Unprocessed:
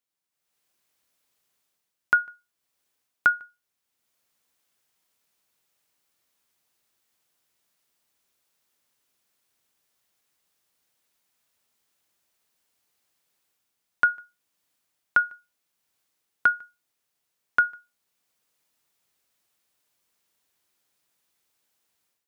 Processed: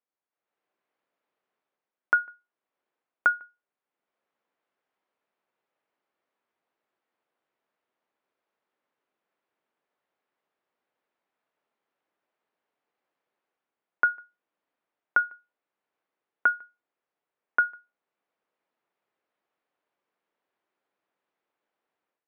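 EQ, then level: band-pass 400–2300 Hz; tilt EQ -3 dB/octave; 0.0 dB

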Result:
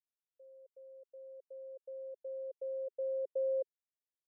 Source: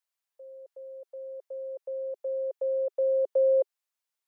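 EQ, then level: steep low-pass 520 Hz 36 dB/octave; differentiator; +15.0 dB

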